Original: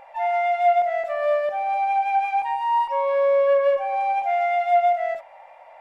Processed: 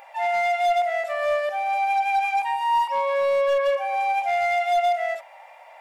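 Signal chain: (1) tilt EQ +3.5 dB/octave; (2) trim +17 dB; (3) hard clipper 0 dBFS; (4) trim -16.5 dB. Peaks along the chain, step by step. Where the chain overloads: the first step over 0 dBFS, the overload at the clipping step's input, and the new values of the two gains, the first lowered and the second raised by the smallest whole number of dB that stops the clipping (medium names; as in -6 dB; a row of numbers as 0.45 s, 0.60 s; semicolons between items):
-10.5 dBFS, +6.5 dBFS, 0.0 dBFS, -16.5 dBFS; step 2, 6.5 dB; step 2 +10 dB, step 4 -9.5 dB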